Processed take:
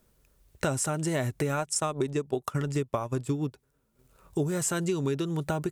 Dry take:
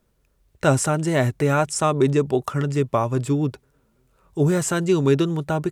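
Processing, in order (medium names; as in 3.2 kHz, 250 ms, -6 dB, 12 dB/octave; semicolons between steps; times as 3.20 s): treble shelf 5.7 kHz +7.5 dB; 1.49–4.44 s: transient shaper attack +4 dB, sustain -10 dB; compression 6:1, threshold -26 dBFS, peak gain reduction 14.5 dB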